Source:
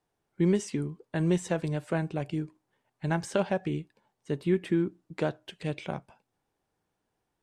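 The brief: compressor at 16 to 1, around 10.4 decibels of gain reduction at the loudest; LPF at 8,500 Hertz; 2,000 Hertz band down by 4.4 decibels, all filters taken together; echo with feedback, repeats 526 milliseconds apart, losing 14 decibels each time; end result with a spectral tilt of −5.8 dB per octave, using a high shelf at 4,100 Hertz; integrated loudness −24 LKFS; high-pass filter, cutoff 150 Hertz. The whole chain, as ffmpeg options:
ffmpeg -i in.wav -af "highpass=150,lowpass=8500,equalizer=frequency=2000:width_type=o:gain=-7.5,highshelf=frequency=4100:gain=6.5,acompressor=threshold=-31dB:ratio=16,aecho=1:1:526|1052:0.2|0.0399,volume=15dB" out.wav

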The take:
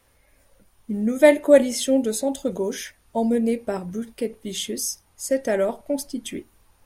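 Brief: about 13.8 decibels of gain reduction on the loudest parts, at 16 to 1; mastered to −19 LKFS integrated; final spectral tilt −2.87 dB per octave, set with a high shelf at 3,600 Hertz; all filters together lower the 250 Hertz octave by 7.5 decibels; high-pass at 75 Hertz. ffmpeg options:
ffmpeg -i in.wav -af "highpass=75,equalizer=frequency=250:width_type=o:gain=-8.5,highshelf=frequency=3600:gain=7,acompressor=threshold=-22dB:ratio=16,volume=9.5dB" out.wav

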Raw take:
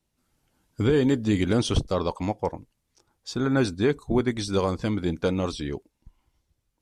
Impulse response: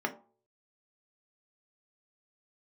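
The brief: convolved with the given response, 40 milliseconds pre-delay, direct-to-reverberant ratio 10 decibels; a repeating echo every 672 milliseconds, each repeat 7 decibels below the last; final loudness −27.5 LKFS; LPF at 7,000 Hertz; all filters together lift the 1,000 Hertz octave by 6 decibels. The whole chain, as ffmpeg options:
-filter_complex "[0:a]lowpass=7000,equalizer=frequency=1000:width_type=o:gain=7.5,aecho=1:1:672|1344|2016|2688|3360:0.447|0.201|0.0905|0.0407|0.0183,asplit=2[link_01][link_02];[1:a]atrim=start_sample=2205,adelay=40[link_03];[link_02][link_03]afir=irnorm=-1:irlink=0,volume=-17dB[link_04];[link_01][link_04]amix=inputs=2:normalize=0,volume=-3.5dB"

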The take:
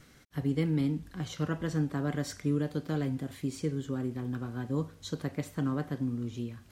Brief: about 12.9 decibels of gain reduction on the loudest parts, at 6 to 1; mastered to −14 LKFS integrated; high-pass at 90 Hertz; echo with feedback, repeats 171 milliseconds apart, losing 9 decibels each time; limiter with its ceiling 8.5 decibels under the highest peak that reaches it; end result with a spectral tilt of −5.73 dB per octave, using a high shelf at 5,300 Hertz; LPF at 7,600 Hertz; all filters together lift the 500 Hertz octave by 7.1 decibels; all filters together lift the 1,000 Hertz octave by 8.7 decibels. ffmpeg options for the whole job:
ffmpeg -i in.wav -af "highpass=90,lowpass=7600,equalizer=frequency=500:width_type=o:gain=6.5,equalizer=frequency=1000:width_type=o:gain=9,highshelf=frequency=5300:gain=6,acompressor=threshold=-36dB:ratio=6,alimiter=level_in=9dB:limit=-24dB:level=0:latency=1,volume=-9dB,aecho=1:1:171|342|513|684:0.355|0.124|0.0435|0.0152,volume=29dB" out.wav

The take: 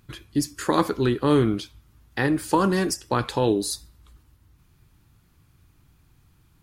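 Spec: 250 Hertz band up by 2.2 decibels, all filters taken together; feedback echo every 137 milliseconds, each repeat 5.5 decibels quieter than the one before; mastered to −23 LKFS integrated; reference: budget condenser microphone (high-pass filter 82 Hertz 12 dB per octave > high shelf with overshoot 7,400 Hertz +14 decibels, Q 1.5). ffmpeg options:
ffmpeg -i in.wav -af "highpass=82,equalizer=frequency=250:width_type=o:gain=3,highshelf=frequency=7400:width_type=q:width=1.5:gain=14,aecho=1:1:137|274|411|548|685|822|959:0.531|0.281|0.149|0.079|0.0419|0.0222|0.0118,volume=-3dB" out.wav

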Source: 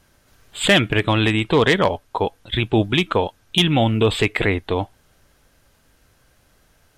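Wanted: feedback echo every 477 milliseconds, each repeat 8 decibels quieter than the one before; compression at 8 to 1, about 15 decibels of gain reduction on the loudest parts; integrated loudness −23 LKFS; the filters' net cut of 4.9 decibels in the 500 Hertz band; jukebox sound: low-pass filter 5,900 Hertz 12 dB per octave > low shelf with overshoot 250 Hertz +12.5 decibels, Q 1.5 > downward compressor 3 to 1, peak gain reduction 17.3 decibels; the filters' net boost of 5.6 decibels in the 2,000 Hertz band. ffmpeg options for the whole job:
ffmpeg -i in.wav -af "equalizer=frequency=500:width_type=o:gain=-3.5,equalizer=frequency=2000:width_type=o:gain=7,acompressor=threshold=-24dB:ratio=8,lowpass=5900,lowshelf=frequency=250:width_type=q:width=1.5:gain=12.5,aecho=1:1:477|954|1431|1908|2385:0.398|0.159|0.0637|0.0255|0.0102,acompressor=threshold=-35dB:ratio=3,volume=12.5dB" out.wav

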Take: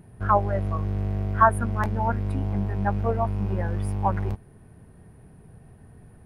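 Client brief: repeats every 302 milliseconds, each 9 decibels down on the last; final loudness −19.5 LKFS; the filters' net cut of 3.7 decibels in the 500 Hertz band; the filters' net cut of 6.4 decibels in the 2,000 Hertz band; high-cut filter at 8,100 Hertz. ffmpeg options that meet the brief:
ffmpeg -i in.wav -af "lowpass=8100,equalizer=frequency=500:width_type=o:gain=-4.5,equalizer=frequency=2000:width_type=o:gain=-9,aecho=1:1:302|604|906|1208:0.355|0.124|0.0435|0.0152,volume=7dB" out.wav

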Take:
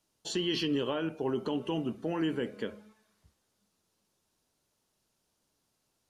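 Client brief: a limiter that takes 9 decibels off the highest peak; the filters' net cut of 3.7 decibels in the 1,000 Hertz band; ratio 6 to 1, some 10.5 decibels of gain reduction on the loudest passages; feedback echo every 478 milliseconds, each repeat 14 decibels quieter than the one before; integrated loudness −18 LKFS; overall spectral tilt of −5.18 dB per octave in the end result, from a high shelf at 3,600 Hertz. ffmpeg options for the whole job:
ffmpeg -i in.wav -af "equalizer=frequency=1000:width_type=o:gain=-4,highshelf=frequency=3600:gain=-8,acompressor=threshold=-39dB:ratio=6,alimiter=level_in=13dB:limit=-24dB:level=0:latency=1,volume=-13dB,aecho=1:1:478|956:0.2|0.0399,volume=28.5dB" out.wav

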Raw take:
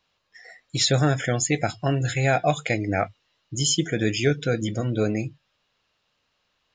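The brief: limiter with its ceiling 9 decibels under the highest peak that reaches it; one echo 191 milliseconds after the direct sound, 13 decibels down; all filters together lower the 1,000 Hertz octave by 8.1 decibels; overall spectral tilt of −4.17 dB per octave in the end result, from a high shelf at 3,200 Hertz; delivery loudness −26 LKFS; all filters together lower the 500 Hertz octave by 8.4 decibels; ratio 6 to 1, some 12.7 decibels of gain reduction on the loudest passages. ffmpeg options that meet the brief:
ffmpeg -i in.wav -af "equalizer=frequency=500:width_type=o:gain=-8.5,equalizer=frequency=1000:width_type=o:gain=-9,highshelf=frequency=3200:gain=4.5,acompressor=threshold=-30dB:ratio=6,alimiter=level_in=2.5dB:limit=-24dB:level=0:latency=1,volume=-2.5dB,aecho=1:1:191:0.224,volume=11dB" out.wav

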